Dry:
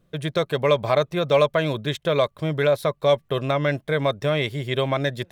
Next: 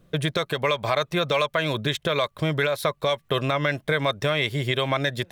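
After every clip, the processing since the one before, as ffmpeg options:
-filter_complex "[0:a]acrossover=split=950[a][b];[a]acompressor=threshold=-28dB:ratio=6[c];[c][b]amix=inputs=2:normalize=0,alimiter=limit=-17.5dB:level=0:latency=1:release=182,volume=6dB"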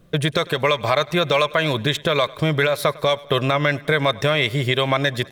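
-af "aecho=1:1:102|204|306|408:0.075|0.045|0.027|0.0162,volume=4.5dB"

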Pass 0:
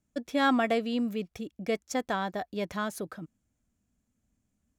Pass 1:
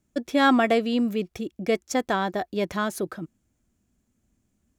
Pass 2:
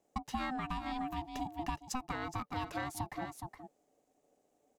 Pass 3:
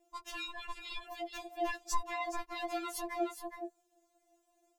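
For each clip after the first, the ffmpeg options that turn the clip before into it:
-af "equalizer=f=360:w=6.4:g=8,volume=5.5dB"
-af "aecho=1:1:417:0.251,aeval=exprs='val(0)*sin(2*PI*510*n/s)':c=same,acompressor=threshold=-33dB:ratio=10,volume=-1dB"
-af "afftfilt=real='re*4*eq(mod(b,16),0)':imag='im*4*eq(mod(b,16),0)':win_size=2048:overlap=0.75,volume=6dB"

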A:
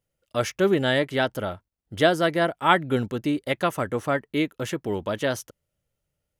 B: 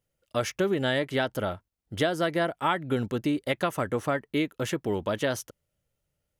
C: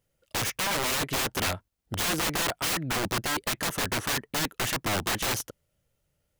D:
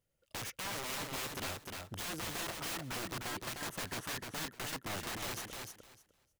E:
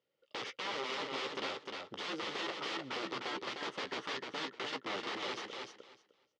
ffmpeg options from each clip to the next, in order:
-af "acompressor=threshold=-22dB:ratio=6"
-af "aeval=exprs='(mod(22.4*val(0)+1,2)-1)/22.4':c=same,volume=4.5dB"
-af "acompressor=threshold=-43dB:ratio=1.5,aecho=1:1:304|608|912:0.631|0.114|0.0204,volume=-7dB"
-filter_complex "[0:a]highpass=400,equalizer=f=420:t=q:w=4:g=3,equalizer=f=680:t=q:w=4:g=-9,equalizer=f=1k:t=q:w=4:g=-4,equalizer=f=1.6k:t=q:w=4:g=-9,equalizer=f=2.5k:t=q:w=4:g=-6,equalizer=f=4k:t=q:w=4:g=-4,lowpass=f=4.1k:w=0.5412,lowpass=f=4.1k:w=1.3066,asplit=2[a][b];[b]adelay=15,volume=-11dB[c];[a][c]amix=inputs=2:normalize=0,volume=7dB"

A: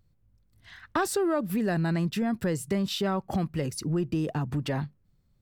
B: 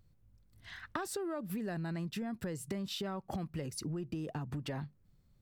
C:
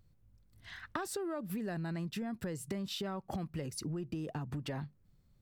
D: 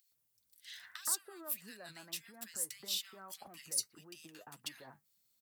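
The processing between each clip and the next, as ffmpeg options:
-af "acompressor=threshold=-37dB:ratio=5"
-af anull
-filter_complex "[0:a]aderivative,acrossover=split=1600[a][b];[a]adelay=120[c];[c][b]amix=inputs=2:normalize=0,flanger=delay=3.1:depth=6.7:regen=50:speed=1.7:shape=sinusoidal,volume=13.5dB"

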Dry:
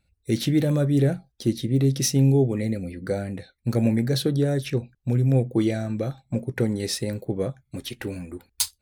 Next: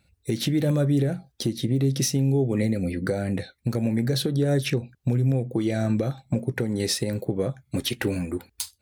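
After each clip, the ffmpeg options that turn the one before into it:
-af "acompressor=threshold=-25dB:ratio=5,highpass=69,alimiter=limit=-21dB:level=0:latency=1:release=285,volume=7.5dB"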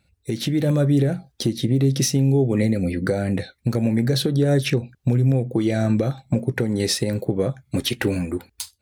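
-af "highshelf=f=9.6k:g=-3.5,dynaudnorm=f=240:g=5:m=4dB"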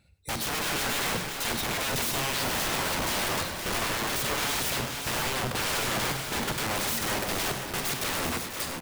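-af "aeval=exprs='(mod(18.8*val(0)+1,2)-1)/18.8':c=same,aecho=1:1:45|97|395|493|523|549:0.266|0.266|0.316|0.251|0.355|0.224"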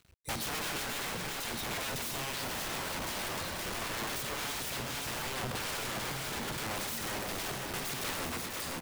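-af "alimiter=level_in=2.5dB:limit=-24dB:level=0:latency=1:release=22,volume=-2.5dB,acrusher=bits=9:mix=0:aa=0.000001,volume=-2.5dB"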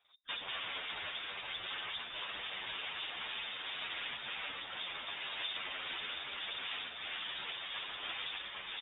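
-filter_complex "[0:a]lowpass=f=3.1k:t=q:w=0.5098,lowpass=f=3.1k:t=q:w=0.6013,lowpass=f=3.1k:t=q:w=0.9,lowpass=f=3.1k:t=q:w=2.563,afreqshift=-3700,afftfilt=real='hypot(re,im)*cos(2*PI*random(0))':imag='hypot(re,im)*sin(2*PI*random(1))':win_size=512:overlap=0.75,asplit=2[a][b];[b]adelay=9.3,afreqshift=-1[c];[a][c]amix=inputs=2:normalize=1,volume=5.5dB"

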